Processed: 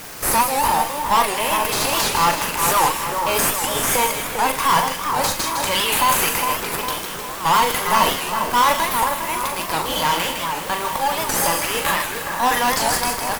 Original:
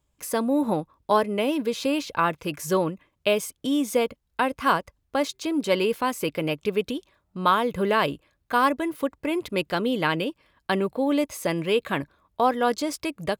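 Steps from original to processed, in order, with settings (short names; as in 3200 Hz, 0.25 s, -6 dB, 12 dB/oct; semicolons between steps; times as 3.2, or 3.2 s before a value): high shelf 4800 Hz +12 dB; harmonic-percussive split percussive -7 dB; tilt +3 dB/oct; transient shaper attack -7 dB, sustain +12 dB; resonant high-pass 910 Hz, resonance Q 3.6; added noise white -41 dBFS; tube stage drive 23 dB, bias 0.55; in parallel at -3 dB: decimation with a swept rate 10×, swing 60% 0.64 Hz; on the sum: doubler 41 ms -7.5 dB; split-band echo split 1800 Hz, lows 0.406 s, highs 0.158 s, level -5.5 dB; on a send at -14 dB: reverb RT60 3.2 s, pre-delay 3 ms; on the sum: record warp 78 rpm, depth 160 cents; gain +5.5 dB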